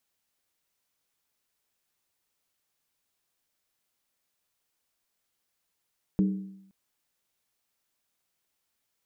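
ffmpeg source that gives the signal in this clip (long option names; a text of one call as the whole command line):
ffmpeg -f lavfi -i "aevalsrc='0.119*pow(10,-3*t/0.79)*sin(2*PI*193*t)+0.0447*pow(10,-3*t/0.626)*sin(2*PI*307.6*t)+0.0168*pow(10,-3*t/0.541)*sin(2*PI*412.2*t)+0.00631*pow(10,-3*t/0.521)*sin(2*PI*443.1*t)+0.00237*pow(10,-3*t/0.485)*sin(2*PI*512*t)':duration=0.52:sample_rate=44100" out.wav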